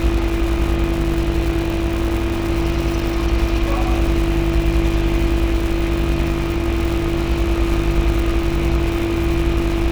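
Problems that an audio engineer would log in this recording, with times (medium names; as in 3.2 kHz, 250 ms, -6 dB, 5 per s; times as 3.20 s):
buzz 50 Hz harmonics 35 -23 dBFS
crackle 270 per s -23 dBFS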